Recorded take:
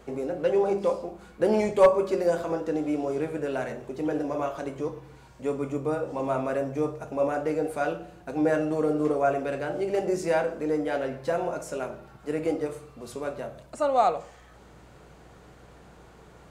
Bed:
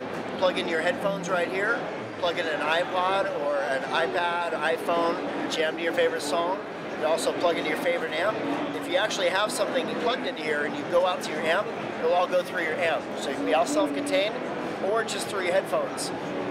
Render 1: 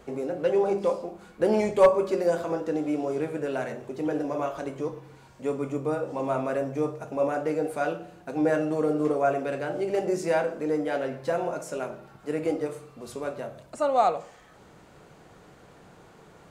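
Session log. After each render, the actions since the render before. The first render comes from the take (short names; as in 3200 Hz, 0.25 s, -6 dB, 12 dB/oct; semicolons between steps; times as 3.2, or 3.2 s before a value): de-hum 60 Hz, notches 2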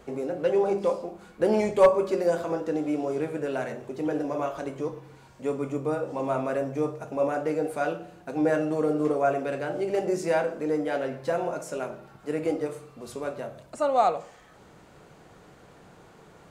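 nothing audible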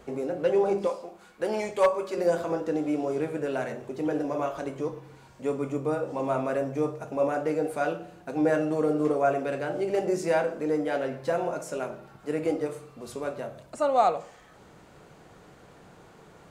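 0.87–2.17 low shelf 470 Hz -11.5 dB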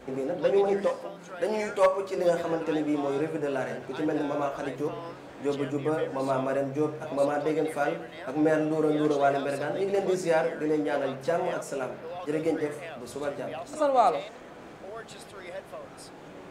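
add bed -15.5 dB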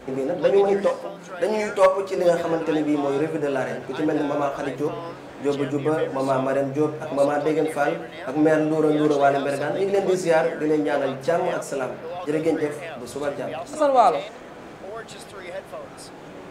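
gain +5.5 dB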